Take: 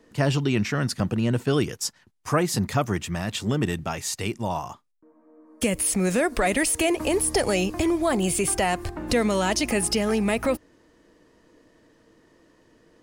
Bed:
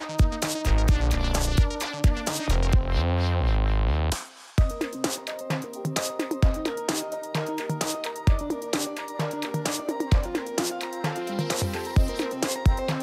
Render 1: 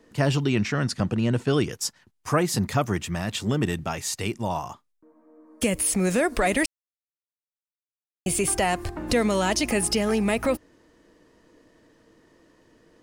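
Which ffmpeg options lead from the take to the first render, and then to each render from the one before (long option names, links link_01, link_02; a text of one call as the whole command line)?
ffmpeg -i in.wav -filter_complex "[0:a]asettb=1/sr,asplit=3[link_01][link_02][link_03];[link_01]atrim=end=0.504[link_04];[link_02]atrim=start=0.5:end=1.71,asetpts=PTS-STARTPTS,afade=type=in:duration=0.004:curve=qsin,afade=type=out:start_time=1.206:duration=0.004:curve=qsin,lowpass=8900[link_05];[link_03]atrim=start=1.706[link_06];[link_04][link_05]acrossfade=duration=0.004:curve1=hsin:curve2=qsin[link_07];[link_07][link_06]acrossfade=duration=0.004:curve1=qsin:curve2=hsin,asplit=3[link_08][link_09][link_10];[link_08]atrim=end=6.66,asetpts=PTS-STARTPTS,afade=type=out:start_time=6.656:duration=0.004:curve=hsin[link_11];[link_09]atrim=start=6.66:end=8.26,asetpts=PTS-STARTPTS,volume=0[link_12];[link_10]atrim=start=8.26,asetpts=PTS-STARTPTS,afade=type=in:duration=0.004:curve=hsin[link_13];[link_11][link_12][link_13]concat=n=3:v=0:a=1" out.wav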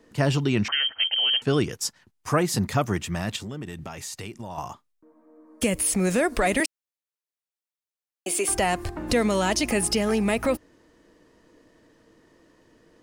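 ffmpeg -i in.wav -filter_complex "[0:a]asettb=1/sr,asplit=3[link_01][link_02][link_03];[link_01]atrim=end=0.684[link_04];[link_02]atrim=start=0.68:end=1.42,asetpts=PTS-STARTPTS,afade=type=in:duration=0.004:curve=qsin,afade=type=out:start_time=0.736:duration=0.004:curve=qsin,lowpass=frequency=2800:width_type=q:width=0.5098,lowpass=frequency=2800:width_type=q:width=0.6013,lowpass=frequency=2800:width_type=q:width=0.9,lowpass=frequency=2800:width_type=q:width=2.563,afreqshift=-3300[link_05];[link_03]atrim=start=1.416[link_06];[link_04][link_05]acrossfade=duration=0.004:curve1=hsin:curve2=qsin[link_07];[link_07][link_06]acrossfade=duration=0.004:curve1=qsin:curve2=hsin,asettb=1/sr,asplit=3[link_08][link_09][link_10];[link_08]atrim=end=3.364[link_11];[link_09]atrim=start=3.36:end=4.58,asetpts=PTS-STARTPTS,afade=type=in:duration=0.004:curve=qsin,afade=type=out:start_time=1.216:duration=0.004:curve=qsin,acompressor=threshold=-33dB:ratio=4:attack=3.2:release=140:knee=1:detection=peak[link_12];[link_10]atrim=start=4.576[link_13];[link_11][link_12]acrossfade=duration=0.004:curve1=hsin:curve2=qsin[link_14];[link_14][link_13]acrossfade=duration=0.004:curve1=qsin:curve2=hsin,asettb=1/sr,asplit=3[link_15][link_16][link_17];[link_15]atrim=end=6.604[link_18];[link_16]atrim=start=6.6:end=8.49,asetpts=PTS-STARTPTS,afade=type=in:duration=0.004:curve=qsin,afade=type=out:start_time=1.886:duration=0.004:curve=qsin,highpass=frequency=290:width=0.5412,highpass=frequency=290:width=1.3066[link_19];[link_17]atrim=start=8.486[link_20];[link_18][link_19]acrossfade=duration=0.004:curve1=hsin:curve2=qsin[link_21];[link_21][link_20]acrossfade=duration=0.004:curve1=qsin:curve2=hsin" out.wav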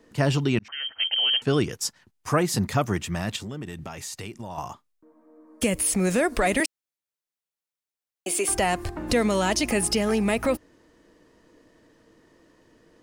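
ffmpeg -i in.wav -filter_complex "[0:a]asplit=2[link_01][link_02];[link_01]atrim=end=0.59,asetpts=PTS-STARTPTS,afade=type=out:start_time=0.586:duration=0.004:curve=hsin[link_03];[link_02]atrim=start=0.59,asetpts=PTS-STARTPTS,afade=type=in:duration=0.54[link_04];[link_03][link_04]concat=n=2:v=0:a=1" out.wav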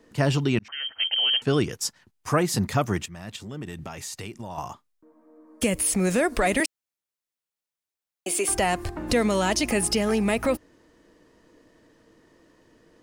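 ffmpeg -i in.wav -filter_complex "[0:a]asplit=2[link_01][link_02];[link_01]atrim=end=3.06,asetpts=PTS-STARTPTS,afade=type=out:start_time=3.056:duration=0.004:curve=hsin:silence=0.223872[link_03];[link_02]atrim=start=3.06,asetpts=PTS-STARTPTS,afade=type=in:duration=0.52:curve=qua:silence=0.223872[link_04];[link_03][link_04]concat=n=2:v=0:a=1" out.wav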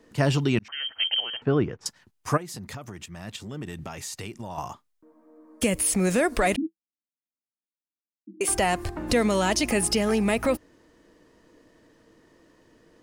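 ffmpeg -i in.wav -filter_complex "[0:a]asettb=1/sr,asplit=3[link_01][link_02][link_03];[link_01]atrim=end=1.204[link_04];[link_02]atrim=start=1.2:end=1.86,asetpts=PTS-STARTPTS,afade=type=in:duration=0.004:curve=qsin,afade=type=out:start_time=0.656:duration=0.004:curve=qsin,lowpass=1600[link_05];[link_03]atrim=start=1.856[link_06];[link_04][link_05]acrossfade=duration=0.004:curve1=hsin:curve2=qsin[link_07];[link_07][link_06]acrossfade=duration=0.004:curve1=qsin:curve2=hsin,asplit=3[link_08][link_09][link_10];[link_08]afade=type=out:start_time=2.36:duration=0.02[link_11];[link_09]acompressor=threshold=-34dB:ratio=12:attack=3.2:release=140:knee=1:detection=peak,afade=type=in:start_time=2.36:duration=0.02,afade=type=out:start_time=3.15:duration=0.02[link_12];[link_10]afade=type=in:start_time=3.15:duration=0.02[link_13];[link_11][link_12][link_13]amix=inputs=3:normalize=0,asettb=1/sr,asplit=3[link_14][link_15][link_16];[link_14]atrim=end=6.564[link_17];[link_15]atrim=start=6.56:end=8.41,asetpts=PTS-STARTPTS,afade=type=in:duration=0.004:curve=qsin,afade=type=out:start_time=1.846:duration=0.004:curve=qsin,asuperpass=centerf=250:order=20:qfactor=1.8[link_18];[link_16]atrim=start=8.406[link_19];[link_17][link_18]acrossfade=duration=0.004:curve1=hsin:curve2=qsin[link_20];[link_20][link_19]acrossfade=duration=0.004:curve1=qsin:curve2=hsin" out.wav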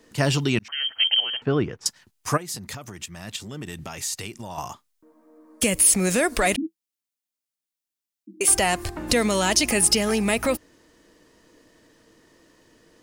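ffmpeg -i in.wav -af "highshelf=frequency=2500:gain=8.5" out.wav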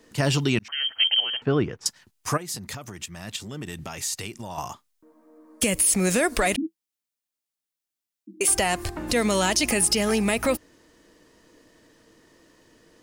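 ffmpeg -i in.wav -af "alimiter=limit=-11dB:level=0:latency=1:release=68" out.wav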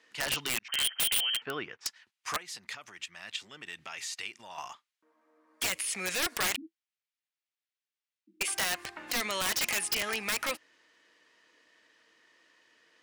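ffmpeg -i in.wav -af "bandpass=frequency=2300:width_type=q:width=1.1:csg=0,aeval=exprs='(mod(12.6*val(0)+1,2)-1)/12.6':channel_layout=same" out.wav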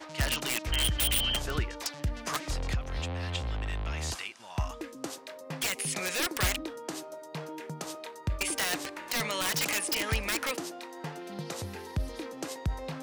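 ffmpeg -i in.wav -i bed.wav -filter_complex "[1:a]volume=-11dB[link_01];[0:a][link_01]amix=inputs=2:normalize=0" out.wav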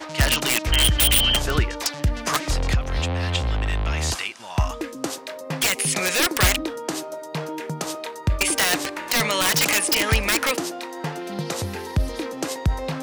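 ffmpeg -i in.wav -af "volume=10dB" out.wav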